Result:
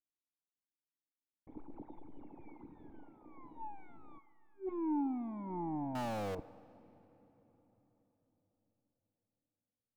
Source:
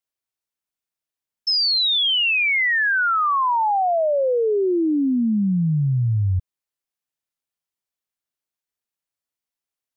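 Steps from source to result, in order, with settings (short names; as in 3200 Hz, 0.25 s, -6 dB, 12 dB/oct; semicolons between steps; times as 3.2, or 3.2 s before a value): minimum comb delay 0.77 ms; 2.45–2.9 sample leveller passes 1; 4.04–6.83 spectral delete 370–1100 Hz; wrapped overs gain 22.5 dB; vocal tract filter u; 5.95–6.35 power-law curve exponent 0.35; band-limited delay 0.101 s, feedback 68%, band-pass 740 Hz, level -20 dB; on a send at -20 dB: reverb RT60 4.4 s, pre-delay 3 ms; on the sum: gain +1.5 dB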